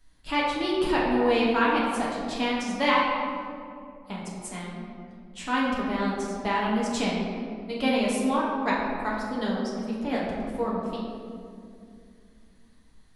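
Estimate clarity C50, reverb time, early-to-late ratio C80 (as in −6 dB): 0.0 dB, 2.4 s, 2.0 dB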